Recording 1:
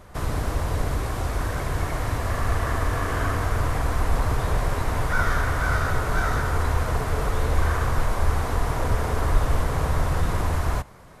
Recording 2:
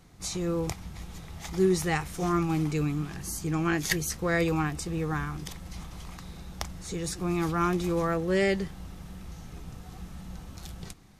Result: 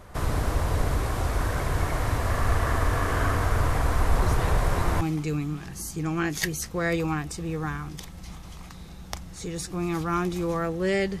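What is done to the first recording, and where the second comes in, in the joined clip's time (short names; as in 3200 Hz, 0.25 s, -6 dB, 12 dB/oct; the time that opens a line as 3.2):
recording 1
4.22 add recording 2 from 1.7 s 0.79 s -9 dB
5.01 switch to recording 2 from 2.49 s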